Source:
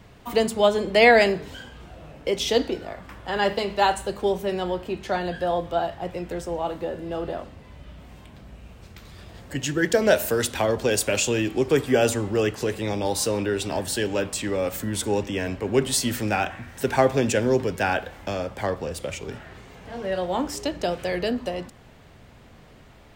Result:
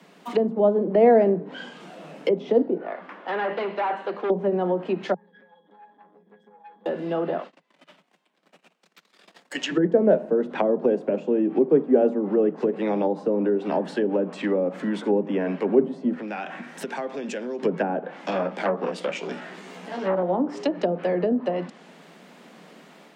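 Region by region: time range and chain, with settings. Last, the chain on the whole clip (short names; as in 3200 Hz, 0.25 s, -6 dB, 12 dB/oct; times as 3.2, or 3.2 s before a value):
2.78–4.3 overloaded stage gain 26 dB + BPF 300–2300 Hz
5.14–6.86 compressor 4:1, threshold -35 dBFS + octave resonator G#, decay 0.26 s + core saturation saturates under 810 Hz
7.38–9.71 gate -42 dBFS, range -26 dB + weighting filter A
16.14–17.63 high shelf 4500 Hz -7.5 dB + compressor 4:1, threshold -33 dBFS
18.27–20.23 doubler 16 ms -3 dB + core saturation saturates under 1200 Hz
whole clip: steep high-pass 160 Hz 96 dB/oct; treble ducked by the level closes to 540 Hz, closed at -21 dBFS; AGC gain up to 4 dB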